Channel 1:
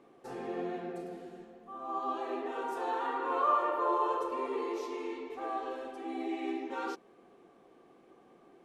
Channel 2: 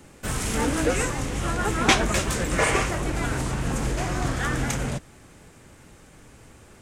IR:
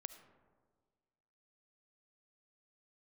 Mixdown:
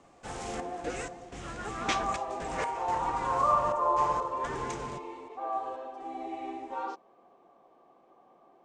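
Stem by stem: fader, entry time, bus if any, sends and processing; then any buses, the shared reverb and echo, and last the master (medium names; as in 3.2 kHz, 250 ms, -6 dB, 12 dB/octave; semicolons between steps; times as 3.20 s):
-6.0 dB, 0.00 s, no send, high-order bell 810 Hz +10.5 dB 1.3 oct
-12.0 dB, 0.00 s, no send, bass shelf 170 Hz -6.5 dB; trance gate "xxxxx..xx..xx" 125 bpm -12 dB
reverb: none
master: low-pass 7.7 kHz 24 dB/octave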